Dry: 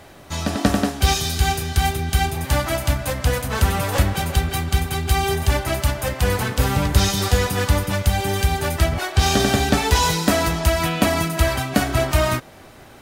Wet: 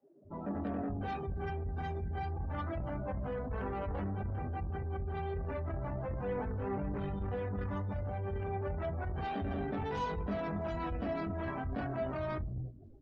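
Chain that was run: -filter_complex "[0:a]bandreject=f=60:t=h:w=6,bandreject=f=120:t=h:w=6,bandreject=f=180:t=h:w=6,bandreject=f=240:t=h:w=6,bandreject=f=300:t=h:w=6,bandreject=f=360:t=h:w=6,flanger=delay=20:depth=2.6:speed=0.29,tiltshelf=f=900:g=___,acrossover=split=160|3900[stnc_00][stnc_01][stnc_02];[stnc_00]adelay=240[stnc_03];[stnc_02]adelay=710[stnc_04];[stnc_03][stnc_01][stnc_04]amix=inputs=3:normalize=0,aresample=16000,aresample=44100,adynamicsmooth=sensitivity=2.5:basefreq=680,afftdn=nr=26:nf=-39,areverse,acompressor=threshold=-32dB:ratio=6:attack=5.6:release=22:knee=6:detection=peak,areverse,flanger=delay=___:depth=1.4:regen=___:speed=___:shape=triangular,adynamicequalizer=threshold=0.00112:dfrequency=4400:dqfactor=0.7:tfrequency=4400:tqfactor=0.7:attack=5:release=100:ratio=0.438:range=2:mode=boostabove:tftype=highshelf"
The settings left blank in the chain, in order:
4.5, 3.9, 83, 1.1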